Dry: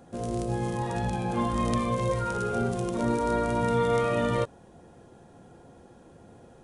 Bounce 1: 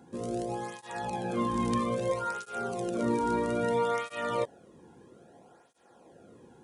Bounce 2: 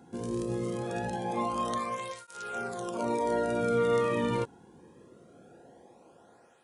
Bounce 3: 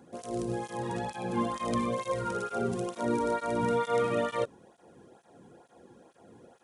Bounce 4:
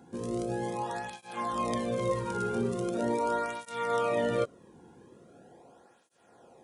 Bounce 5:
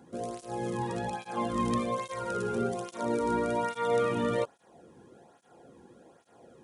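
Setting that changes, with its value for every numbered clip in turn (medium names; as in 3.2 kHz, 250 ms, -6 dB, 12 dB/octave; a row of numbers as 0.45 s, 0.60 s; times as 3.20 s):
cancelling through-zero flanger, nulls at: 0.61 Hz, 0.22 Hz, 2.2 Hz, 0.41 Hz, 1.2 Hz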